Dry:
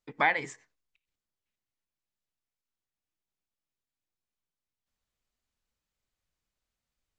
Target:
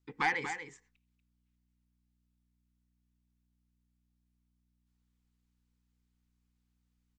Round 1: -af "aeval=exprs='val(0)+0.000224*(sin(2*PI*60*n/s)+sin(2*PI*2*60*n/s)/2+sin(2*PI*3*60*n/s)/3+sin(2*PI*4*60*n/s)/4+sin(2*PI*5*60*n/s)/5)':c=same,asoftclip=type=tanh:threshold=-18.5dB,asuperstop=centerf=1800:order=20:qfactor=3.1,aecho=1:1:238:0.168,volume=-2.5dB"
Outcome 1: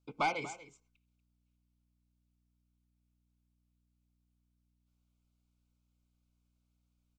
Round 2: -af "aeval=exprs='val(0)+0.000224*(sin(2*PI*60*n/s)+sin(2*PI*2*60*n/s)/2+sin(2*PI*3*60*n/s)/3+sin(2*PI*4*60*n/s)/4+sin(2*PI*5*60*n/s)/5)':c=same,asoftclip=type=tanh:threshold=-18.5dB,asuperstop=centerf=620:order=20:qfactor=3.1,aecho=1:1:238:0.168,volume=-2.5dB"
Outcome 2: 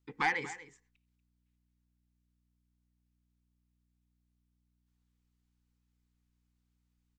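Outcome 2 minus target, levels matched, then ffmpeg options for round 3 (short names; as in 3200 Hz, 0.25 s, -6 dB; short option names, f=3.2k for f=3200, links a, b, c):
echo-to-direct -6.5 dB
-af "aeval=exprs='val(0)+0.000224*(sin(2*PI*60*n/s)+sin(2*PI*2*60*n/s)/2+sin(2*PI*3*60*n/s)/3+sin(2*PI*4*60*n/s)/4+sin(2*PI*5*60*n/s)/5)':c=same,asoftclip=type=tanh:threshold=-18.5dB,asuperstop=centerf=620:order=20:qfactor=3.1,aecho=1:1:238:0.355,volume=-2.5dB"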